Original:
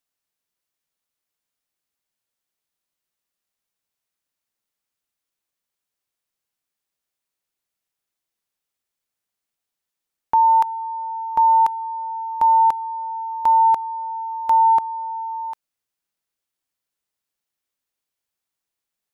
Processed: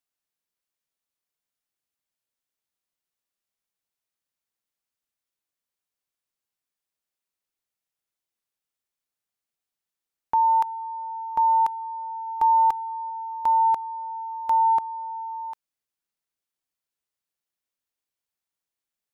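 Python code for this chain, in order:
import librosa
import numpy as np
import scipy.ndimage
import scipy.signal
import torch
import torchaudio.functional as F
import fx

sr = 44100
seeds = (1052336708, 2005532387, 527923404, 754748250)

y = fx.comb(x, sr, ms=2.5, depth=0.57, at=(12.26, 13.09), fade=0.02)
y = y * librosa.db_to_amplitude(-5.0)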